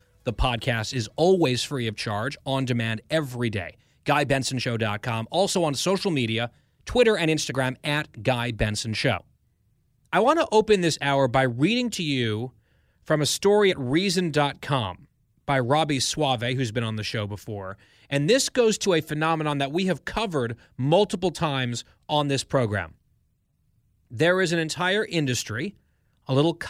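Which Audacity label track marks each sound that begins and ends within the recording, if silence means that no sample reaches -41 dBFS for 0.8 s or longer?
10.130000	22.910000	sound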